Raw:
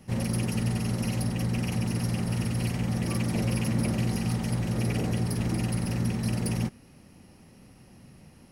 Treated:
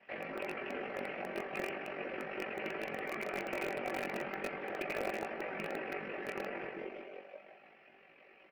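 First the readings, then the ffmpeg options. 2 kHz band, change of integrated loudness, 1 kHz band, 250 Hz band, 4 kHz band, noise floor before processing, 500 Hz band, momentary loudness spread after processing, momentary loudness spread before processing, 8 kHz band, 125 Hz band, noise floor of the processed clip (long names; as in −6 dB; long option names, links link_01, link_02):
+0.5 dB, −11.5 dB, −1.0 dB, −17.0 dB, −11.5 dB, −54 dBFS, −1.0 dB, 10 LU, 2 LU, −21.0 dB, −30.5 dB, −62 dBFS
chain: -filter_complex "[0:a]asplit=7[link_01][link_02][link_03][link_04][link_05][link_06][link_07];[link_02]adelay=174,afreqshift=94,volume=-6dB[link_08];[link_03]adelay=348,afreqshift=188,volume=-12dB[link_09];[link_04]adelay=522,afreqshift=282,volume=-18dB[link_10];[link_05]adelay=696,afreqshift=376,volume=-24.1dB[link_11];[link_06]adelay=870,afreqshift=470,volume=-30.1dB[link_12];[link_07]adelay=1044,afreqshift=564,volume=-36.1dB[link_13];[link_01][link_08][link_09][link_10][link_11][link_12][link_13]amix=inputs=7:normalize=0,aeval=exprs='val(0)+0.00631*(sin(2*PI*50*n/s)+sin(2*PI*2*50*n/s)/2+sin(2*PI*3*50*n/s)/3+sin(2*PI*4*50*n/s)/4+sin(2*PI*5*50*n/s)/5)':channel_layout=same,acrossover=split=2000[link_14][link_15];[link_15]acompressor=threshold=-49dB:ratio=10[link_16];[link_14][link_16]amix=inputs=2:normalize=0,aeval=exprs='val(0)*sin(2*PI*23*n/s)':channel_layout=same,highpass=frequency=460:width=0.5412,highpass=frequency=460:width=1.3066,equalizer=frequency=480:width_type=q:width=4:gain=-3,equalizer=frequency=960:width_type=q:width=4:gain=-10,equalizer=frequency=1700:width_type=q:width=4:gain=4,equalizer=frequency=2400:width_type=q:width=4:gain=8,lowpass=frequency=2600:width=0.5412,lowpass=frequency=2600:width=1.3066,afftfilt=real='hypot(re,im)*cos(2*PI*random(0))':imag='hypot(re,im)*sin(2*PI*random(1))':win_size=512:overlap=0.75,flanger=delay=18:depth=2.8:speed=0.37,aecho=1:1:5.2:0.38,asplit=2[link_17][link_18];[link_18]acrusher=bits=4:dc=4:mix=0:aa=0.000001,volume=-8.5dB[link_19];[link_17][link_19]amix=inputs=2:normalize=0,volume=11dB"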